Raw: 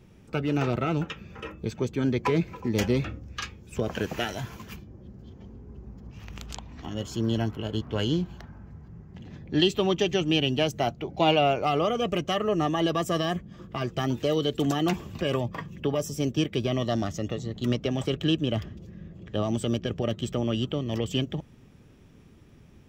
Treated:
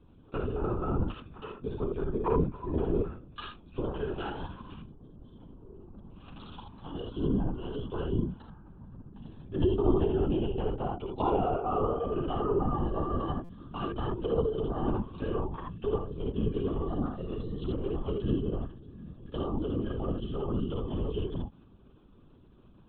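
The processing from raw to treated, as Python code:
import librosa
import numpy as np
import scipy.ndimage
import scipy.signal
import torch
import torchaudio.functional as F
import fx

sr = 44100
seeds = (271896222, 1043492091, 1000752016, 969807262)

p1 = fx.env_lowpass_down(x, sr, base_hz=1200.0, full_db=-22.0)
p2 = fx.fixed_phaser(p1, sr, hz=410.0, stages=8)
p3 = p2 + fx.room_early_taps(p2, sr, ms=(53, 79), db=(-4.0, -4.5), dry=0)
p4 = fx.lpc_vocoder(p3, sr, seeds[0], excitation='whisper', order=16)
p5 = fx.buffer_glitch(p4, sr, at_s=(13.44,), block=256, repeats=8)
y = p5 * librosa.db_to_amplitude(-2.5)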